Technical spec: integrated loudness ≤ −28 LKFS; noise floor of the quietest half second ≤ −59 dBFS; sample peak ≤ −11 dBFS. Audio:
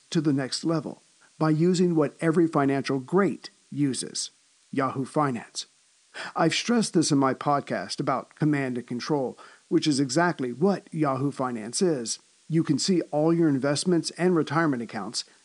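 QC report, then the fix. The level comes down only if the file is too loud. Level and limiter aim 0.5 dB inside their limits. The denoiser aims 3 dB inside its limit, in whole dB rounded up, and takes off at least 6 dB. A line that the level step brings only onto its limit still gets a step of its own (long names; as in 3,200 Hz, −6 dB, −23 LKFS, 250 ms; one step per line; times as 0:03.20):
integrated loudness −25.5 LKFS: out of spec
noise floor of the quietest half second −62 dBFS: in spec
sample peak −8.5 dBFS: out of spec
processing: level −3 dB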